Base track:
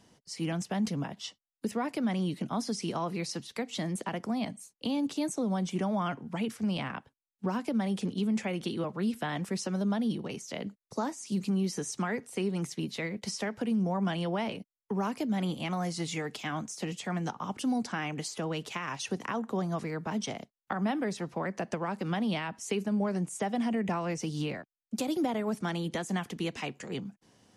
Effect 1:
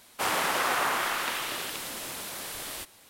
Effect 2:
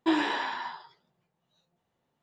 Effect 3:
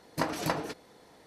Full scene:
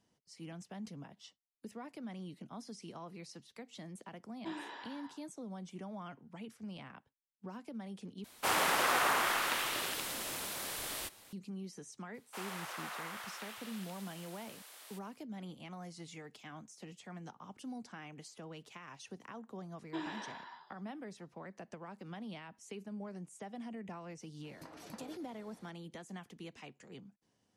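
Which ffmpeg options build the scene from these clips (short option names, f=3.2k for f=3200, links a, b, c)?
-filter_complex "[2:a]asplit=2[a][b];[1:a]asplit=2[c][d];[0:a]volume=-15dB[e];[d]highpass=570[f];[3:a]acompressor=threshold=-43dB:ratio=6:attack=3.2:release=140:knee=1:detection=peak[g];[e]asplit=2[h][i];[h]atrim=end=8.244[j];[c]atrim=end=3.09,asetpts=PTS-STARTPTS,volume=-3dB[k];[i]atrim=start=11.326[l];[a]atrim=end=2.22,asetpts=PTS-STARTPTS,volume=-17.5dB,afade=t=in:d=0.004:c=hsin,afade=t=out:st=2.216:d=0.004:c=hsin,adelay=4390[m];[f]atrim=end=3.09,asetpts=PTS-STARTPTS,volume=-16.5dB,afade=t=in:d=0.004:c=hsin,afade=t=out:st=3.086:d=0.004:c=hsin,adelay=12140[n];[b]atrim=end=2.22,asetpts=PTS-STARTPTS,volume=-15.5dB,afade=t=in:d=0.004:c=hsin,afade=t=out:st=2.216:d=0.004:c=hsin,adelay=19870[o];[g]atrim=end=1.26,asetpts=PTS-STARTPTS,volume=-6dB,afade=t=in:d=0.004:c=hsin,afade=t=out:st=1.256:d=0.004:c=hsin,adelay=24440[p];[j][k]acrossfade=d=0.004:c1=hsin:c2=hsin[q];[q][l]acrossfade=d=0.004:c1=hsin:c2=hsin[r];[r][m][n][o][p]amix=inputs=5:normalize=0"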